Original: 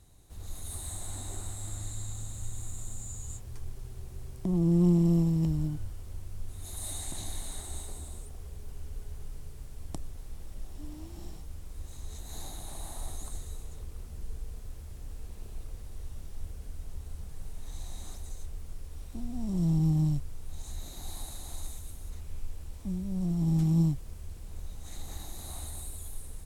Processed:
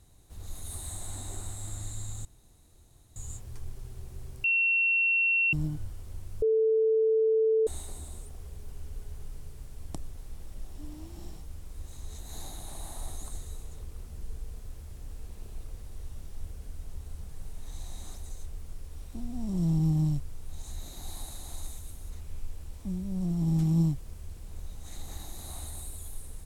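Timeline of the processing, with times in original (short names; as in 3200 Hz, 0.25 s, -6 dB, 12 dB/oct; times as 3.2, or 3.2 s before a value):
2.25–3.16 room tone
4.44–5.53 bleep 2720 Hz -22 dBFS
6.42–7.67 bleep 442 Hz -21 dBFS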